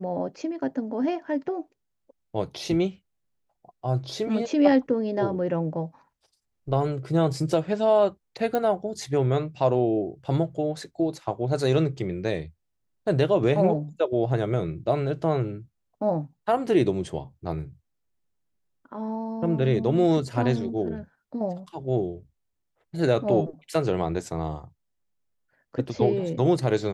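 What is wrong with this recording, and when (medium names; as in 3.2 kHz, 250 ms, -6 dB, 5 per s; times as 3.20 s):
8.55 s: pop -14 dBFS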